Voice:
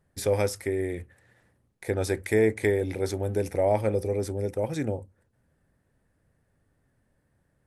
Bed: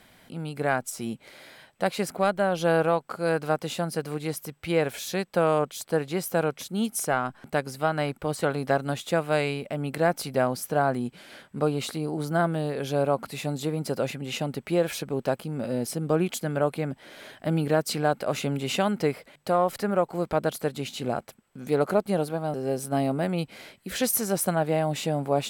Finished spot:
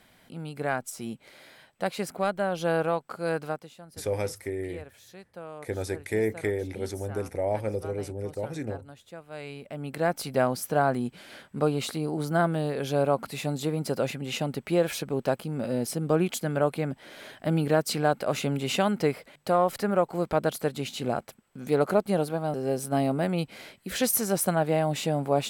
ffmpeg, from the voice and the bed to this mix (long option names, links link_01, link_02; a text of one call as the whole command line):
ffmpeg -i stem1.wav -i stem2.wav -filter_complex "[0:a]adelay=3800,volume=-4.5dB[link_01];[1:a]volume=15.5dB,afade=type=out:start_time=3.4:duration=0.3:silence=0.16788,afade=type=in:start_time=9.3:duration=1.11:silence=0.112202[link_02];[link_01][link_02]amix=inputs=2:normalize=0" out.wav